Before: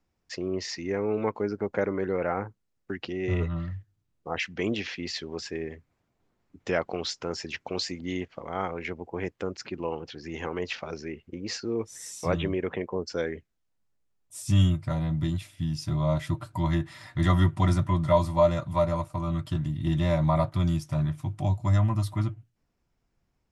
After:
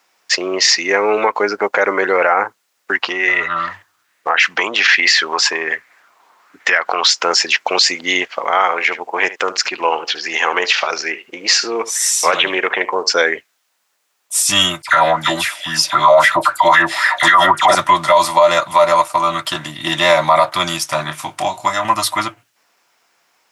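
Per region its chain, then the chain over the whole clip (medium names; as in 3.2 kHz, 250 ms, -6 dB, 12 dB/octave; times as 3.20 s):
2.95–7.06 s: compression, threshold -31 dBFS + sweeping bell 1.2 Hz 950–1900 Hz +12 dB
8.51–13.13 s: bass shelf 400 Hz -6 dB + delay 74 ms -16 dB + loudspeaker Doppler distortion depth 0.13 ms
14.82–17.75 s: phase dispersion lows, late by 60 ms, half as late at 2 kHz + sweeping bell 3.8 Hz 570–1700 Hz +16 dB
21.03–21.85 s: compression, threshold -24 dBFS + doubling 26 ms -8 dB
whole clip: high-pass 890 Hz 12 dB/octave; loudness maximiser +26 dB; trim -1 dB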